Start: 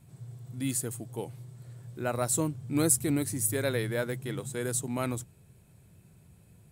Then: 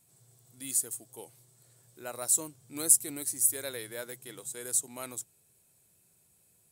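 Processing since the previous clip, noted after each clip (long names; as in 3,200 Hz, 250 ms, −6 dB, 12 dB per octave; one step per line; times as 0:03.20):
bass and treble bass −13 dB, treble +13 dB
level −8.5 dB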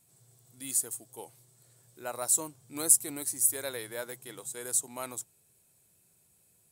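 dynamic equaliser 910 Hz, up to +6 dB, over −57 dBFS, Q 1.3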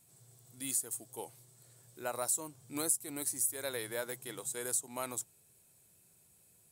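downward compressor 3 to 1, threshold −33 dBFS, peak gain reduction 13 dB
level +1 dB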